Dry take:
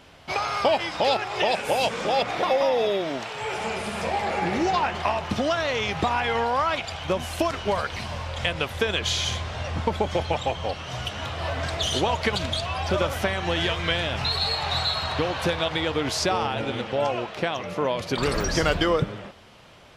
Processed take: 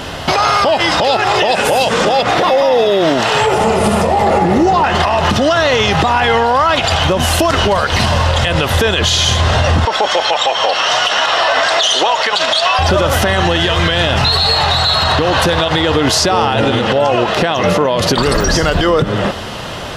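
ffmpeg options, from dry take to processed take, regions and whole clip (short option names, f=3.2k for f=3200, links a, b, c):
-filter_complex "[0:a]asettb=1/sr,asplit=3[a][b][c];[a]atrim=end=3.464[d];[b]atrim=start=3.46:end=4.84,asetpts=PTS-STARTPTS,afade=t=in:d=0.004:c=qsin,afade=t=out:st=1.376:d=0.004:c=qsin,equalizer=f=3.5k:w=0.39:g=-9,bandreject=f=1.6k:w=10[e];[c]atrim=start=4.836[f];[d][e]acrossfade=d=0.004:c1=hsin:c2=qsin[g];[g][f]acrossfade=d=0.004:c1=qsin:c2=hsin,asettb=1/sr,asplit=3[h][i][j];[h]atrim=end=9.854[k];[i]atrim=start=9.85:end=12.79,asetpts=PTS-STARTPTS,afade=t=in:d=0.004:c=qsin,afade=t=out:st=2.936:d=0.004:c=qsin,aeval=exprs='val(0)+0.00282*sin(2*PI*5500*n/s)':c=same,highpass=670,lowpass=7k[l];[j]atrim=start=12.786[m];[k][l]acrossfade=d=0.004:c1=hsin:c2=qsin[n];[n][m]acrossfade=d=0.004:c1=qsin:c2=hsin,bandreject=f=2.3k:w=7.3,acompressor=threshold=-31dB:ratio=4,alimiter=level_in=29dB:limit=-1dB:release=50:level=0:latency=1,volume=-3dB"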